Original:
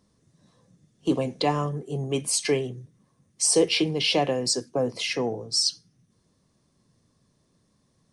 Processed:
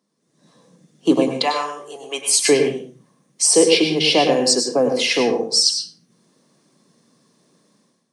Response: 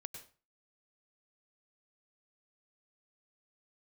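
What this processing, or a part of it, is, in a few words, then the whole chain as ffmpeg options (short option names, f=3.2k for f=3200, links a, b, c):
far laptop microphone: -filter_complex "[0:a]asettb=1/sr,asplit=3[a][b][c];[a]atrim=end=1.364[d];[b]atrim=start=1.36:end=2.42,asetpts=PTS-STARTPTS,afade=t=in:d=0.004:c=qsin,afade=t=out:st=1.056:d=0.004:c=qsin,highpass=810[e];[c]atrim=start=2.416[f];[d][e]acrossfade=d=0.004:c1=hsin:c2=qsin[g];[g][f]acrossfade=d=0.004:c1=qsin:c2=hsin[h];[1:a]atrim=start_sample=2205[i];[h][i]afir=irnorm=-1:irlink=0,highpass=f=190:w=0.5412,highpass=f=190:w=1.3066,dynaudnorm=f=160:g=5:m=14.5dB"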